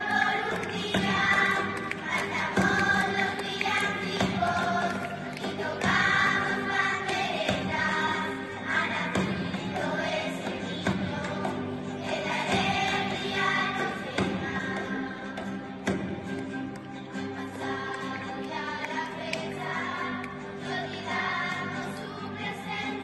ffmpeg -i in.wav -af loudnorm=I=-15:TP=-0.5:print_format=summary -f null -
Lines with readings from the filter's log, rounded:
Input Integrated:    -29.1 LUFS
Input True Peak:     -10.6 dBTP
Input LRA:             7.3 LU
Input Threshold:     -39.1 LUFS